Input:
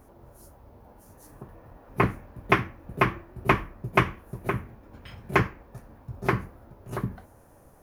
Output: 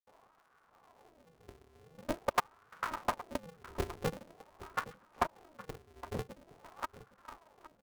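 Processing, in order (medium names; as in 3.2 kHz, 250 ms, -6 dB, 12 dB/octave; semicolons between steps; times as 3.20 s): slices played last to first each 106 ms, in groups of 3; bands offset in time highs, lows 70 ms, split 4.5 kHz; wah-wah 0.46 Hz 230–1300 Hz, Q 9.7; on a send: delay 816 ms -16.5 dB; on the sum: polarity switched at an audio rate 160 Hz; trim +3.5 dB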